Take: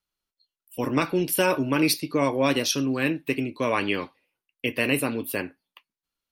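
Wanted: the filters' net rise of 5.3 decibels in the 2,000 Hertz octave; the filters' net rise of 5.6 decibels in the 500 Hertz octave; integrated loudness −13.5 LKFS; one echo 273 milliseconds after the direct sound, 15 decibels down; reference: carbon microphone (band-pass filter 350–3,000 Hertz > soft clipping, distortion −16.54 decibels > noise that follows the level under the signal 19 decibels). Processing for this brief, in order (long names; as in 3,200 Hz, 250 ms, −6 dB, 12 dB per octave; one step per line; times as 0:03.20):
band-pass filter 350–3,000 Hz
parametric band 500 Hz +7.5 dB
parametric band 2,000 Hz +8 dB
single-tap delay 273 ms −15 dB
soft clipping −12 dBFS
noise that follows the level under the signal 19 dB
level +10 dB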